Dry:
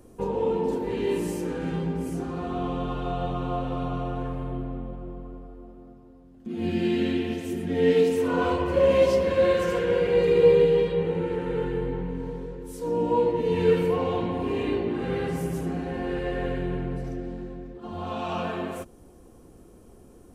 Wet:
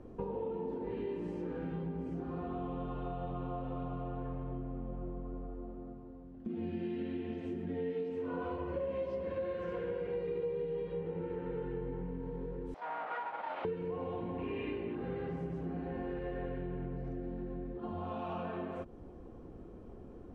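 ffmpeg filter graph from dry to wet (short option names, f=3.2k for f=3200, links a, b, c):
-filter_complex "[0:a]asettb=1/sr,asplit=3[a][b][c];[a]atrim=end=12.744[d];[b]atrim=start=12.74:end=13.65,asetpts=PTS-STARTPTS,afade=t=in:d=0.004:c=qsin,afade=t=out:st=0.906:d=0.004:c=qsin,aeval=exprs='abs(val(0))':c=same,highpass=790,lowpass=3.6k[e];[c]atrim=start=13.646[f];[d][e]acrossfade=d=0.004:c1=hsin:c2=qsin[g];[g][f]acrossfade=d=0.004:c1=qsin:c2=hsin,asettb=1/sr,asplit=3[h][i][j];[h]atrim=end=14.384[k];[i]atrim=start=14.38:end=14.95,asetpts=PTS-STARTPTS,afade=t=in:d=0.004:c=qsin,afade=t=out:st=0.566:d=0.004:c=qsin,equalizer=f=2.5k:w=1.8:g=11.5,bandreject=f=730:w=15[l];[j]atrim=start=14.946[m];[k][l]acrossfade=d=0.004:c1=hsin:c2=qsin[n];[n][m]acrossfade=d=0.004:c1=qsin:c2=hsin,lowpass=3.5k,highshelf=f=2.2k:g=-10,acompressor=threshold=-38dB:ratio=5,volume=1dB"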